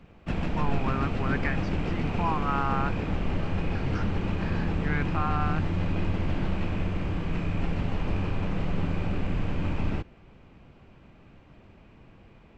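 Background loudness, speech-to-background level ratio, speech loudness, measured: −30.5 LKFS, −3.0 dB, −33.5 LKFS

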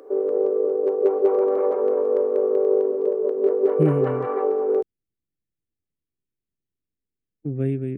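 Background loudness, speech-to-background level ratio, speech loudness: −21.5 LKFS, −5.0 dB, −26.5 LKFS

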